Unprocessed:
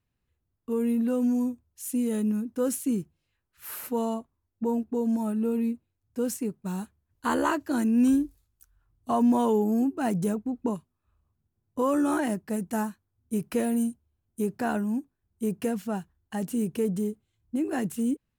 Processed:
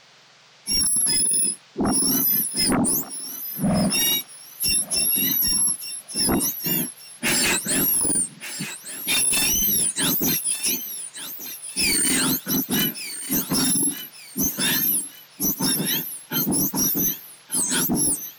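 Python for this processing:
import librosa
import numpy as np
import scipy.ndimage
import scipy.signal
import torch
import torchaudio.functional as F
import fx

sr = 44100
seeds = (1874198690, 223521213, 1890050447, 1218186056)

p1 = fx.octave_mirror(x, sr, pivot_hz=1600.0)
p2 = fx.dmg_noise_band(p1, sr, seeds[0], low_hz=390.0, high_hz=5500.0, level_db=-67.0)
p3 = fx.fold_sine(p2, sr, drive_db=17, ceiling_db=-12.0)
p4 = p2 + (p3 * 10.0 ** (-8.0 / 20.0))
y = fx.echo_thinned(p4, sr, ms=1177, feedback_pct=31, hz=770.0, wet_db=-11.5)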